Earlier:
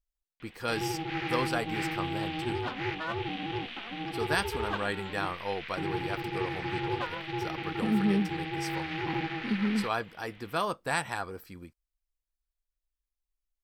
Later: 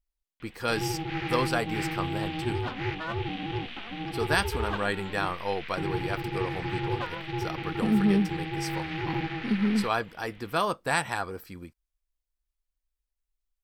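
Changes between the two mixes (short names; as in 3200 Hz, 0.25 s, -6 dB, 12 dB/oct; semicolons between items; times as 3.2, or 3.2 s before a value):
speech +3.5 dB; background: add low shelf 120 Hz +11 dB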